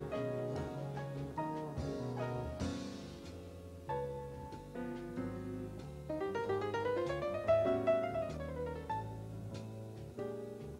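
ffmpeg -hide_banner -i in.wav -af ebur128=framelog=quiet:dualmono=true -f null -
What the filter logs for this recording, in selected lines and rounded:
Integrated loudness:
  I:         -36.8 LUFS
  Threshold: -46.9 LUFS
Loudness range:
  LRA:         7.6 LU
  Threshold: -56.3 LUFS
  LRA low:   -41.0 LUFS
  LRA high:  -33.4 LUFS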